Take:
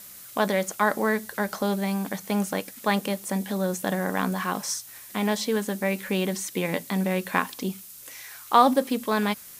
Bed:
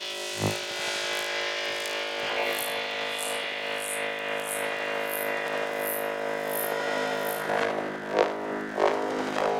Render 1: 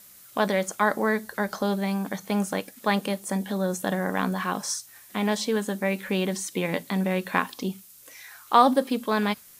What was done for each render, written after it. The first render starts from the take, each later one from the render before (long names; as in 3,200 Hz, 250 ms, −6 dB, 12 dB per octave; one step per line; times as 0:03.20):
noise reduction from a noise print 6 dB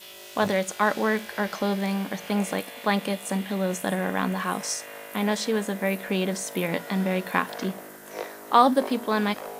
mix in bed −11.5 dB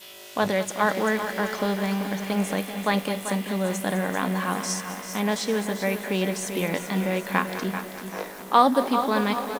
on a send: repeating echo 389 ms, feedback 42%, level −10 dB
on the sum: feedback echo at a low word length 205 ms, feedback 80%, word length 6 bits, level −13.5 dB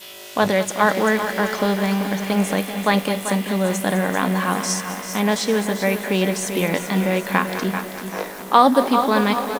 level +5.5 dB
brickwall limiter −1 dBFS, peak gain reduction 2.5 dB